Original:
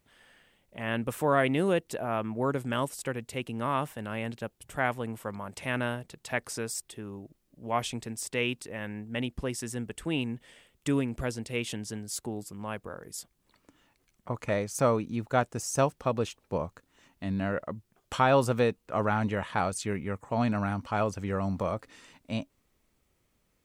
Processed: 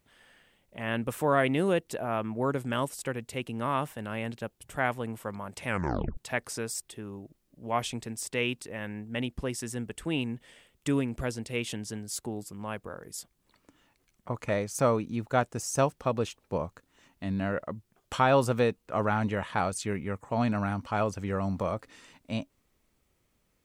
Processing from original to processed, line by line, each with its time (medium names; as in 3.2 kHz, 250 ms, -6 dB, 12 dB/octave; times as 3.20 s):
5.66 s: tape stop 0.51 s